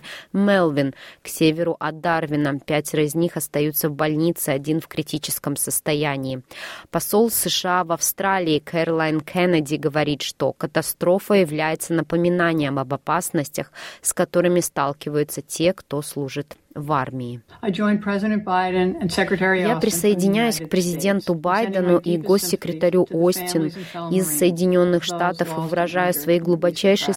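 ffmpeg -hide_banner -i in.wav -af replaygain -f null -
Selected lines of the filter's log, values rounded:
track_gain = +1.1 dB
track_peak = 0.352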